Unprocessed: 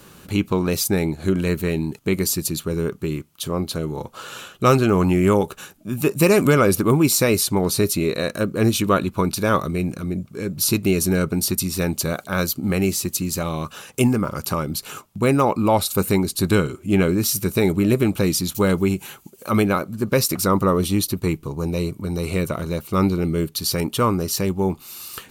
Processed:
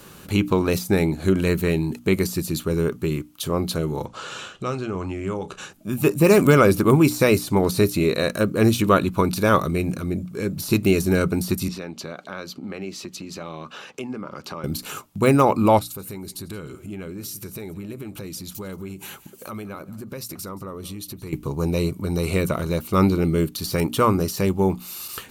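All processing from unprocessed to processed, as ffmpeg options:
ffmpeg -i in.wav -filter_complex "[0:a]asettb=1/sr,asplit=3[link_01][link_02][link_03];[link_01]atrim=end=4.064[link_04];[link_02]atrim=start=4.06:end=5.73,asetpts=PTS-STARTPTS,afade=type=in:duration=0.004:curve=qsin,afade=type=out:start_time=1.666:duration=0.004:curve=qsin,lowpass=frequency=7800:width=0.5412,lowpass=frequency=7800:width=1.3066,acompressor=threshold=-31dB:ratio=2.5:attack=3.2:release=140:knee=1:detection=peak,asplit=2[link_05][link_06];[link_06]adelay=32,volume=-14dB[link_07];[link_05][link_07]amix=inputs=2:normalize=0,atrim=end_sample=73647[link_08];[link_03]atrim=start=5.726[link_09];[link_04][link_08]acrossfade=duration=0.004:curve1=hsin:curve2=qsin[link_10];[link_10][link_09]acrossfade=duration=0.004:curve1=qsin:curve2=hsin,asettb=1/sr,asplit=3[link_11][link_12][link_13];[link_11]atrim=end=11.684[link_14];[link_12]atrim=start=11.68:end=14.64,asetpts=PTS-STARTPTS,afade=type=in:duration=0.004:curve=qsin,afade=type=out:start_time=2.956:duration=0.004:curve=qsin,acrossover=split=160 5400:gain=0.141 1 0.0631[link_15][link_16][link_17];[link_15][link_16][link_17]amix=inputs=3:normalize=0,acompressor=threshold=-35dB:ratio=2.5:attack=3.2:release=140:knee=1:detection=peak[link_18];[link_13]atrim=start=14.636[link_19];[link_14][link_18]acrossfade=duration=0.004:curve1=hsin:curve2=qsin[link_20];[link_20][link_19]acrossfade=duration=0.004:curve1=qsin:curve2=hsin,asettb=1/sr,asplit=3[link_21][link_22][link_23];[link_21]atrim=end=15.794[link_24];[link_22]atrim=start=15.79:end=21.33,asetpts=PTS-STARTPTS,afade=type=in:duration=0.004:curve=qsin,afade=type=out:start_time=5.536:duration=0.004:curve=qsin,acompressor=threshold=-34dB:ratio=5:attack=3.2:release=140:knee=1:detection=peak,aecho=1:1:175:0.112,atrim=end_sample=244314[link_25];[link_23]atrim=start=21.326[link_26];[link_24][link_25]acrossfade=duration=0.004:curve1=hsin:curve2=qsin[link_27];[link_27][link_26]acrossfade=duration=0.004:curve1=qsin:curve2=hsin,bandreject=frequency=60:width_type=h:width=6,bandreject=frequency=120:width_type=h:width=6,bandreject=frequency=180:width_type=h:width=6,bandreject=frequency=240:width_type=h:width=6,bandreject=frequency=300:width_type=h:width=6,deesser=0.45,equalizer=frequency=12000:width=4.5:gain=2,volume=1.5dB" out.wav

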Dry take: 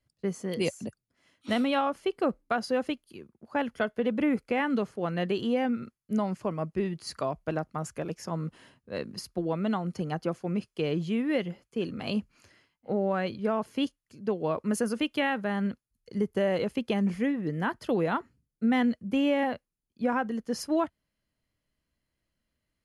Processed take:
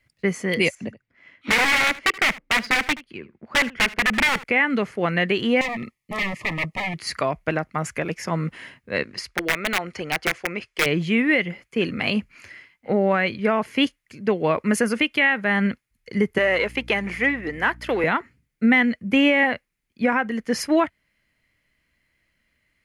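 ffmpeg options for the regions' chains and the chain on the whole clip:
ffmpeg -i in.wav -filter_complex "[0:a]asettb=1/sr,asplit=3[link_01][link_02][link_03];[link_01]atrim=end=0.754[link_04];[link_02]atrim=start=0.75:end=4.44,asetpts=PTS-STARTPTS,afade=type=in:duration=0.004:curve=qsin,afade=type=out:start_time=3.686:duration=0.004:curve=qsin,aeval=exprs='(mod(15.8*val(0)+1,2)-1)/15.8':channel_layout=same,adynamicsmooth=sensitivity=6:basefreq=3600,aecho=1:1:77:0.112,atrim=end_sample=162729[link_05];[link_03]atrim=start=4.436[link_06];[link_04][link_05]acrossfade=duration=0.004:curve1=hsin:curve2=qsin[link_07];[link_07][link_06]acrossfade=duration=0.004:curve1=qsin:curve2=hsin,asettb=1/sr,asplit=3[link_08][link_09][link_10];[link_08]atrim=end=5.614[link_11];[link_09]atrim=start=5.61:end=6.96,asetpts=PTS-STARTPTS,afade=type=in:duration=0.004:curve=qsin,afade=type=out:start_time=1.346:duration=0.004:curve=qsin,aeval=exprs='0.0251*(abs(mod(val(0)/0.0251+3,4)-2)-1)':channel_layout=same,asuperstop=centerf=1500:order=12:qfactor=3.5[link_12];[link_10]atrim=start=6.956[link_13];[link_11][link_12]acrossfade=duration=0.004:curve1=hsin:curve2=qsin[link_14];[link_14][link_13]acrossfade=duration=0.004:curve1=qsin:curve2=hsin,asettb=1/sr,asplit=3[link_15][link_16][link_17];[link_15]atrim=end=9.034[link_18];[link_16]atrim=start=9.03:end=10.86,asetpts=PTS-STARTPTS,afade=type=in:duration=0.004:curve=qsin,afade=type=out:start_time=1.826:duration=0.004:curve=qsin,lowpass=7600,equalizer=frequency=180:width=1.2:gain=-13.5,aeval=exprs='(mod(18.8*val(0)+1,2)-1)/18.8':channel_layout=same[link_19];[link_17]atrim=start=10.856[link_20];[link_18][link_19]acrossfade=duration=0.004:curve1=hsin:curve2=qsin[link_21];[link_21][link_20]acrossfade=duration=0.004:curve1=qsin:curve2=hsin,asettb=1/sr,asplit=3[link_22][link_23][link_24];[link_22]atrim=end=16.384[link_25];[link_23]atrim=start=16.38:end=18.04,asetpts=PTS-STARTPTS,afade=type=in:duration=0.004:curve=qsin,afade=type=out:start_time=1.656:duration=0.004:curve=qsin,aeval=exprs='if(lt(val(0),0),0.708*val(0),val(0))':channel_layout=same,highpass=350,aeval=exprs='val(0)+0.00355*(sin(2*PI*60*n/s)+sin(2*PI*2*60*n/s)/2+sin(2*PI*3*60*n/s)/3+sin(2*PI*4*60*n/s)/4+sin(2*PI*5*60*n/s)/5)':channel_layout=same[link_26];[link_24]atrim=start=18.036[link_27];[link_25][link_26]acrossfade=duration=0.004:curve1=hsin:curve2=qsin[link_28];[link_28][link_27]acrossfade=duration=0.004:curve1=qsin:curve2=hsin,equalizer=frequency=2100:width_type=o:width=0.78:gain=15,alimiter=limit=-16dB:level=0:latency=1:release=338,volume=7.5dB" out.wav

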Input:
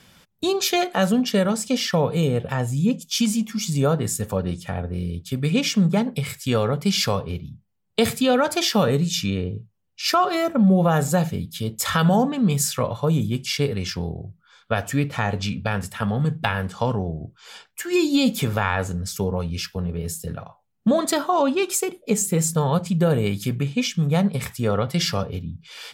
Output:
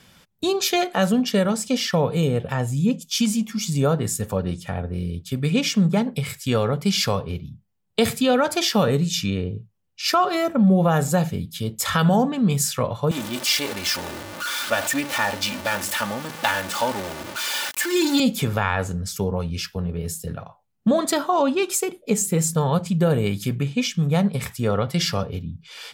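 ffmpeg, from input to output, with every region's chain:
ffmpeg -i in.wav -filter_complex "[0:a]asettb=1/sr,asplit=3[link_01][link_02][link_03];[link_01]atrim=end=13.114[link_04];[link_02]atrim=start=13.11:end=18.2,asetpts=PTS-STARTPTS,afade=type=in:duration=0.004:curve=qsin,afade=type=out:start_time=5.086:duration=0.004:curve=qsin,aeval=exprs='val(0)+0.5*0.075*sgn(val(0))':channel_layout=same,highpass=frequency=600:poles=1,aecho=1:1:3.4:0.67,atrim=end_sample=224469[link_05];[link_03]atrim=start=18.196[link_06];[link_04][link_05]acrossfade=duration=0.004:curve1=hsin:curve2=qsin[link_07];[link_07][link_06]acrossfade=duration=0.004:curve1=qsin:curve2=hsin" out.wav

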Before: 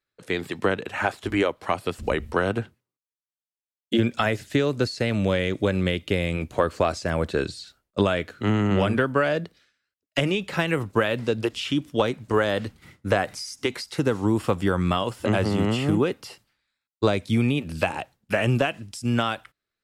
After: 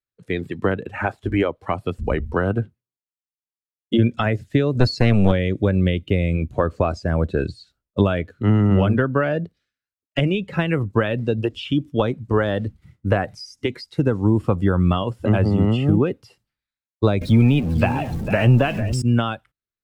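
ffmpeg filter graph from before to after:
ffmpeg -i in.wav -filter_complex "[0:a]asettb=1/sr,asplit=3[link_01][link_02][link_03];[link_01]atrim=end=4.754[link_04];[link_02]atrim=start=4.75:end=5.32,asetpts=PTS-STARTPTS,afade=type=in:duration=0.004:curve=qsin,afade=type=out:start_time=0.566:duration=0.004:curve=qsin,highshelf=frequency=10000:gain=7.5,acontrast=41,aeval=exprs='clip(val(0),-1,0.0841)':channel_layout=same[link_05];[link_03]atrim=start=5.316[link_06];[link_04][link_05]acrossfade=duration=0.004:curve1=hsin:curve2=qsin[link_07];[link_07][link_06]acrossfade=duration=0.004:curve1=qsin:curve2=hsin,asettb=1/sr,asplit=3[link_08][link_09][link_10];[link_08]atrim=end=17.214[link_11];[link_09]atrim=start=17.21:end=19.02,asetpts=PTS-STARTPTS,afade=type=in:duration=0.004:curve=qsin,afade=type=out:start_time=1.806:duration=0.004:curve=qsin,aeval=exprs='val(0)+0.5*0.0501*sgn(val(0))':channel_layout=same,aecho=1:1:450:0.299,atrim=end_sample=79821[link_12];[link_10]atrim=start=19.016[link_13];[link_11][link_12]acrossfade=duration=0.004:curve1=hsin:curve2=qsin[link_14];[link_14][link_13]acrossfade=duration=0.004:curve1=qsin:curve2=hsin,lowshelf=frequency=200:gain=10.5,afftdn=noise_reduction=14:noise_floor=-31" out.wav

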